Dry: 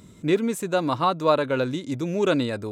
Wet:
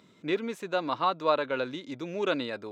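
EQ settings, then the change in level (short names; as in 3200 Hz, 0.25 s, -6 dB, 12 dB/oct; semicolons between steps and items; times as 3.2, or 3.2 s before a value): HPF 110 Hz; air absorption 260 m; RIAA curve recording; -3.0 dB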